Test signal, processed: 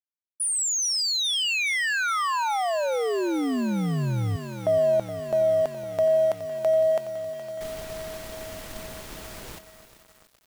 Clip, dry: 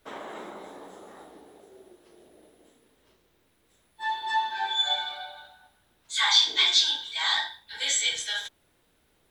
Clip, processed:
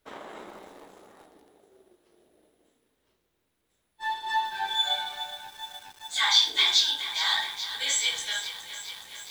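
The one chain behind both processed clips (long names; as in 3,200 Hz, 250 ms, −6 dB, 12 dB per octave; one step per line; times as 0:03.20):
mu-law and A-law mismatch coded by A
feedback echo at a low word length 419 ms, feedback 80%, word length 7 bits, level −12 dB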